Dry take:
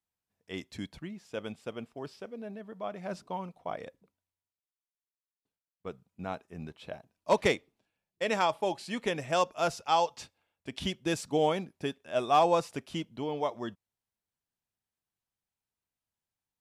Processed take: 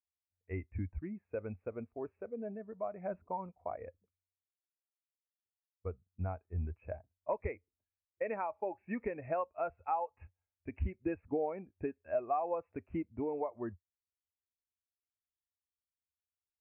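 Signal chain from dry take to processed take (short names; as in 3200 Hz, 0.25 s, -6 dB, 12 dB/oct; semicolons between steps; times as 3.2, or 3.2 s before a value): steep low-pass 2600 Hz 96 dB/oct; resonant low shelf 110 Hz +8.5 dB, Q 3; compressor 6:1, threshold -36 dBFS, peak gain reduction 16 dB; spectral expander 1.5:1; gain +2 dB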